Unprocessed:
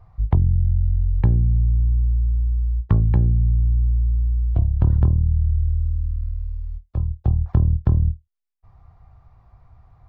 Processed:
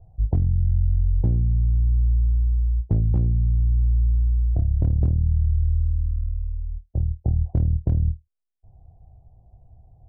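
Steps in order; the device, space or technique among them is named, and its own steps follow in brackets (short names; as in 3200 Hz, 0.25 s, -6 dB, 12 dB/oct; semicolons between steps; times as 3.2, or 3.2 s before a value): steep low-pass 750 Hz 48 dB/oct; clipper into limiter (hard clip -10 dBFS, distortion -24 dB; limiter -13.5 dBFS, peak gain reduction 3.5 dB)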